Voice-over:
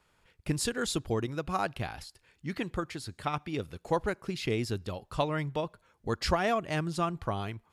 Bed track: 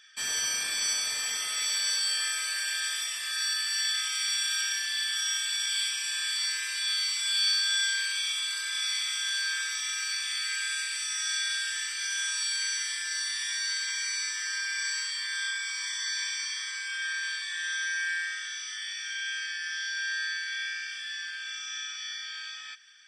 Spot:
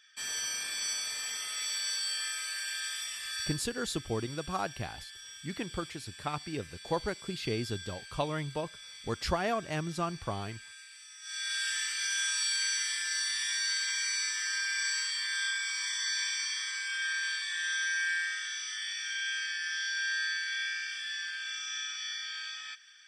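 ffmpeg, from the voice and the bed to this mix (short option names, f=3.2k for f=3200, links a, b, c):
-filter_complex "[0:a]adelay=3000,volume=-3dB[a];[1:a]volume=12.5dB,afade=t=out:st=3.41:d=0.21:silence=0.223872,afade=t=in:st=11.21:d=0.47:silence=0.125893[b];[a][b]amix=inputs=2:normalize=0"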